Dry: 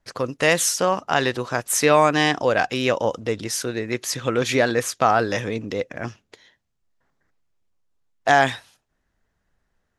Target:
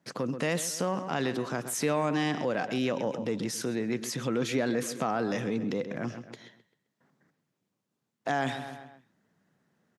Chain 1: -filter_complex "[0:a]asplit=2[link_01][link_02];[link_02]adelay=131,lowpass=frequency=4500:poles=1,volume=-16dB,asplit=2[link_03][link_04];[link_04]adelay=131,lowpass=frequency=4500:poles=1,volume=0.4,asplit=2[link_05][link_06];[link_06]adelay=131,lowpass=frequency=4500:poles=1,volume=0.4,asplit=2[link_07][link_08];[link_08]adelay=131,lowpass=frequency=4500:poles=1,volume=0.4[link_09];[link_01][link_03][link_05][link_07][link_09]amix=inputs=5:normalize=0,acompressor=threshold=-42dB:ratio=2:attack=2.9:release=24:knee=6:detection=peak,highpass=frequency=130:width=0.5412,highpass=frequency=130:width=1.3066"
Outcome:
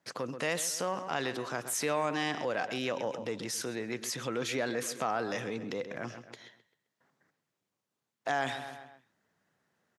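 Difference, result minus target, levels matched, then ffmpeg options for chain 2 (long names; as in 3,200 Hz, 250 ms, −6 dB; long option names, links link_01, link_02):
250 Hz band −5.0 dB
-filter_complex "[0:a]asplit=2[link_01][link_02];[link_02]adelay=131,lowpass=frequency=4500:poles=1,volume=-16dB,asplit=2[link_03][link_04];[link_04]adelay=131,lowpass=frequency=4500:poles=1,volume=0.4,asplit=2[link_05][link_06];[link_06]adelay=131,lowpass=frequency=4500:poles=1,volume=0.4,asplit=2[link_07][link_08];[link_08]adelay=131,lowpass=frequency=4500:poles=1,volume=0.4[link_09];[link_01][link_03][link_05][link_07][link_09]amix=inputs=5:normalize=0,acompressor=threshold=-42dB:ratio=2:attack=2.9:release=24:knee=6:detection=peak,highpass=frequency=130:width=0.5412,highpass=frequency=130:width=1.3066,equalizer=frequency=190:width_type=o:width=2:gain=10"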